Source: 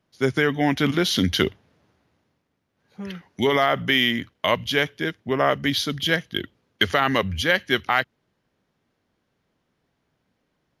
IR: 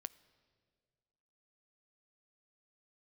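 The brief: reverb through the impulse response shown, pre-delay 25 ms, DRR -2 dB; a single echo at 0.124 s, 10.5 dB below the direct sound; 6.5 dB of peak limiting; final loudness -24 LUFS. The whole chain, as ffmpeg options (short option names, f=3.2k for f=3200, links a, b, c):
-filter_complex "[0:a]alimiter=limit=-11.5dB:level=0:latency=1,aecho=1:1:124:0.299,asplit=2[a][b];[1:a]atrim=start_sample=2205,adelay=25[c];[b][c]afir=irnorm=-1:irlink=0,volume=6.5dB[d];[a][d]amix=inputs=2:normalize=0,volume=-3.5dB"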